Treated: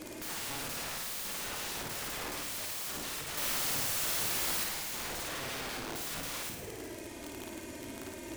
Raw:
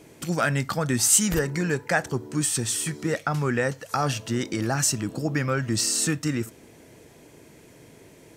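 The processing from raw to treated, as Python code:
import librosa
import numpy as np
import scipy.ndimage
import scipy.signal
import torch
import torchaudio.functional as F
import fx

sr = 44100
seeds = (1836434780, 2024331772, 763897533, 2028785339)

p1 = fx.env_flanger(x, sr, rest_ms=3.7, full_db=-21.0)
p2 = fx.over_compress(p1, sr, threshold_db=-32.0, ratio=-0.5)
p3 = p1 + (p2 * 10.0 ** (-2.5 / 20.0))
p4 = 10.0 ** (-19.5 / 20.0) * np.tanh(p3 / 10.0 ** (-19.5 / 20.0))
p5 = fx.bessel_lowpass(p4, sr, hz=610.0, order=2, at=(5.28, 5.96))
p6 = (np.mod(10.0 ** (36.0 / 20.0) * p5 + 1.0, 2.0) - 1.0) / 10.0 ** (36.0 / 20.0)
p7 = fx.quant_dither(p6, sr, seeds[0], bits=6, dither='triangular', at=(3.37, 4.64))
y = p7 + fx.room_flutter(p7, sr, wall_m=9.4, rt60_s=0.79, dry=0)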